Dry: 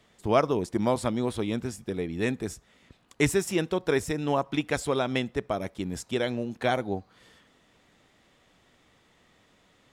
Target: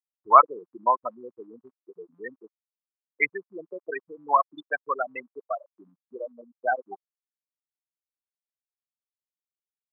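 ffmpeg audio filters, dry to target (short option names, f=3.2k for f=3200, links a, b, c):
-af "acrusher=bits=2:mode=log:mix=0:aa=0.000001,afftfilt=real='re*gte(hypot(re,im),0.178)':imag='im*gte(hypot(re,im),0.178)':win_size=1024:overlap=0.75,highpass=f=1.1k:t=q:w=4.2,volume=5.5dB"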